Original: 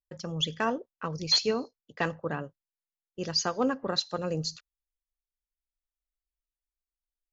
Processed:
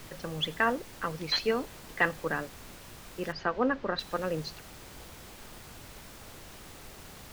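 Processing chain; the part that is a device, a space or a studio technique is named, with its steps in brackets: horn gramophone (BPF 190–3100 Hz; bell 1800 Hz +8 dB; wow and flutter; pink noise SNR 13 dB); 3.32–3.99 air absorption 200 m

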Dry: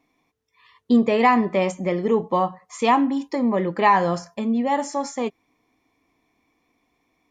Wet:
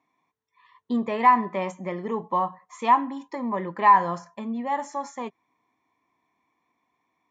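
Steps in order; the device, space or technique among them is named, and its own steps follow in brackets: car door speaker (speaker cabinet 110–7400 Hz, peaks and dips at 280 Hz -4 dB, 470 Hz -4 dB, 1000 Hz +10 dB, 1800 Hz +4 dB, 2800 Hz -3 dB, 4900 Hz -8 dB); gain -7 dB

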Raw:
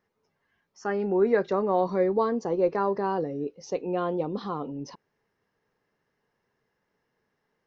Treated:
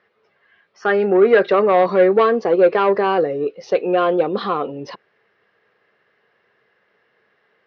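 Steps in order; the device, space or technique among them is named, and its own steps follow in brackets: overdrive pedal into a guitar cabinet (overdrive pedal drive 15 dB, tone 3500 Hz, clips at -10.5 dBFS; speaker cabinet 88–4100 Hz, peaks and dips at 160 Hz -5 dB, 270 Hz -9 dB, 910 Hz -10 dB); gain +9 dB

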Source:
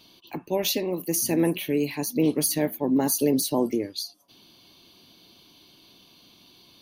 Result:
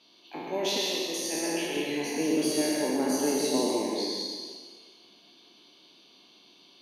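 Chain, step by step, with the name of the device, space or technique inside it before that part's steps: spectral trails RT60 1.62 s; supermarket ceiling speaker (BPF 280–6400 Hz; reverb RT60 1.0 s, pre-delay 0.103 s, DRR 0.5 dB); 0.78–1.77 low shelf 460 Hz -8.5 dB; gain -7 dB

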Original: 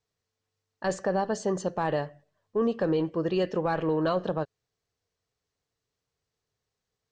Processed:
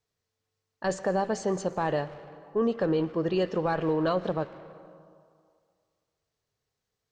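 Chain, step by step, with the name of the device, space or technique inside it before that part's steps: saturated reverb return (on a send at -11 dB: reverb RT60 2.0 s, pre-delay 0.105 s + soft clip -31 dBFS, distortion -8 dB)

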